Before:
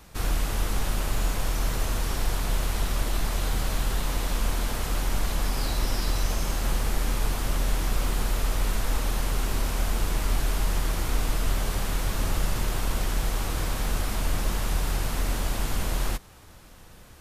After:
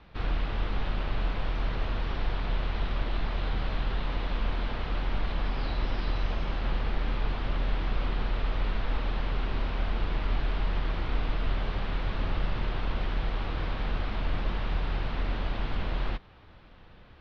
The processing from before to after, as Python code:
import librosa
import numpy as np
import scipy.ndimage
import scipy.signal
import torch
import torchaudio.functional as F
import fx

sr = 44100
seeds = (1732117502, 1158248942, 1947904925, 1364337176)

y = scipy.signal.sosfilt(scipy.signal.cheby2(4, 40, 7100.0, 'lowpass', fs=sr, output='sos'), x)
y = F.gain(torch.from_numpy(y), -3.0).numpy()